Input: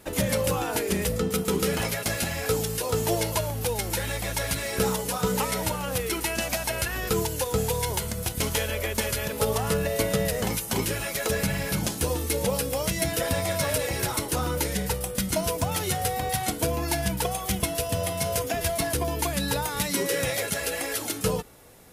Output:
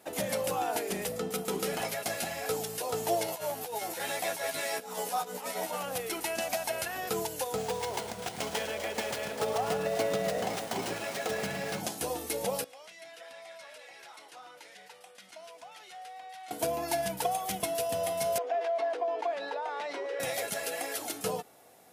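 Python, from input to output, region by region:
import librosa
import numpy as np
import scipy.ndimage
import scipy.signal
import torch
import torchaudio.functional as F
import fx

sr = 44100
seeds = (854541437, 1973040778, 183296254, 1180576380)

y = fx.chain(x, sr, fx.peak_eq(hz=63.0, db=-12.5, octaves=2.6),
    fx.over_compress(threshold_db=-31.0, ratio=-0.5),
    fx.doubler(ms=12.0, db=-3), at=(3.27, 5.83))
y = fx.chain(y, sr, fx.echo_alternate(ms=125, hz=1600.0, feedback_pct=71, wet_db=-7),
    fx.running_max(window=3), at=(7.56, 11.8))
y = fx.chain(y, sr, fx.lowpass(hz=2400.0, slope=12),
    fx.differentiator(),
    fx.env_flatten(amount_pct=50), at=(12.64, 16.51))
y = fx.chain(y, sr, fx.highpass(hz=420.0, slope=24),
    fx.spacing_loss(db_at_10k=36),
    fx.env_flatten(amount_pct=70), at=(18.38, 20.2))
y = scipy.signal.sosfilt(scipy.signal.bessel(2, 240.0, 'highpass', norm='mag', fs=sr, output='sos'), y)
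y = fx.peak_eq(y, sr, hz=720.0, db=10.5, octaves=0.34)
y = y * 10.0 ** (-6.5 / 20.0)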